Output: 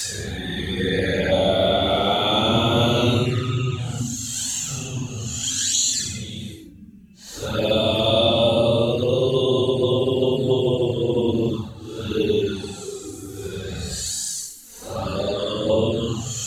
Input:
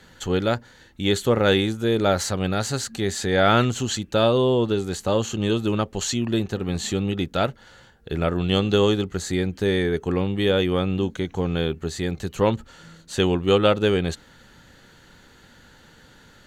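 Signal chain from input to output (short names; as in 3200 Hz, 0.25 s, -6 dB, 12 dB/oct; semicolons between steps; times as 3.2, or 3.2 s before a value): tone controls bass 0 dB, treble +11 dB; notches 50/100/150/200/250/300 Hz; Paulstretch 8.1×, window 0.05 s, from 3.22; envelope flanger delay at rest 5.8 ms, full sweep at -14.5 dBFS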